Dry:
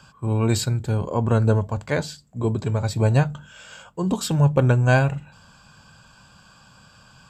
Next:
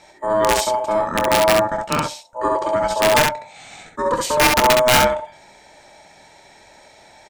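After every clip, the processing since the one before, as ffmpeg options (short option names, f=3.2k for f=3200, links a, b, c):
-af "aeval=exprs='val(0)*sin(2*PI*750*n/s)':c=same,aeval=exprs='(mod(3.98*val(0)+1,2)-1)/3.98':c=same,aecho=1:1:25|67:0.282|0.668,volume=4.5dB"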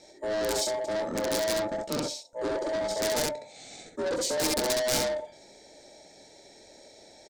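-af "firequalizer=gain_entry='entry(150,0);entry(270,8);entry(490,9);entry(1000,-10);entry(2100,-2);entry(11000,-21)':delay=0.05:min_phase=1,asoftclip=type=tanh:threshold=-18.5dB,aexciter=amount=3.8:drive=9.2:freq=4k,volume=-8dB"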